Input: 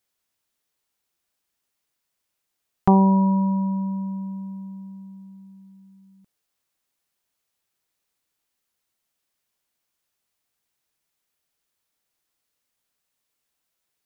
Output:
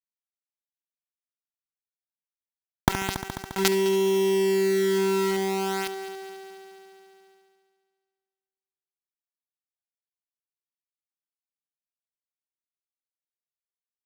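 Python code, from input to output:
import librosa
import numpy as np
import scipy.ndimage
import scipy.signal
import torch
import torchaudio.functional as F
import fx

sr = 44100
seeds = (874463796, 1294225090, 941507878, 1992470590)

p1 = fx.lower_of_two(x, sr, delay_ms=2.2)
p2 = scipy.signal.sosfilt(scipy.signal.butter(2, 1100.0, 'lowpass', fs=sr, output='sos'), p1)
p3 = fx.low_shelf(p2, sr, hz=110.0, db=3.0)
p4 = fx.rider(p3, sr, range_db=5, speed_s=0.5)
p5 = p3 + (p4 * librosa.db_to_amplitude(2.0))
p6 = fx.gate_flip(p5, sr, shuts_db=-11.0, range_db=-30)
p7 = fx.quant_companded(p6, sr, bits=2)
p8 = fx.notch_comb(p7, sr, f0_hz=590.0)
p9 = p8 + fx.echo_heads(p8, sr, ms=70, heads='first and third', feedback_pct=55, wet_db=-20, dry=0)
p10 = fx.env_flatten(p9, sr, amount_pct=50)
y = p10 * librosa.db_to_amplitude(-2.0)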